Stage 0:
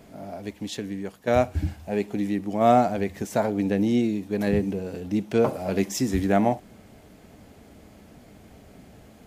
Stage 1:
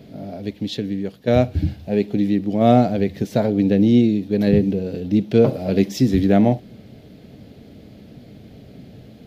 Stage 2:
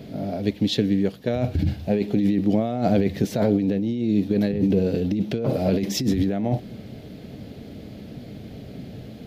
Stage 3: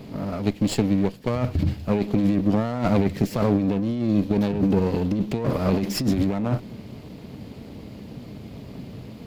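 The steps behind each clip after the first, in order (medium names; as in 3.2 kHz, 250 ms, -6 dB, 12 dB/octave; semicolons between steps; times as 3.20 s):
ten-band graphic EQ 125 Hz +11 dB, 250 Hz +5 dB, 500 Hz +6 dB, 1 kHz -7 dB, 4 kHz +10 dB, 8 kHz -10 dB
compressor with a negative ratio -21 dBFS, ratio -1
comb filter that takes the minimum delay 0.41 ms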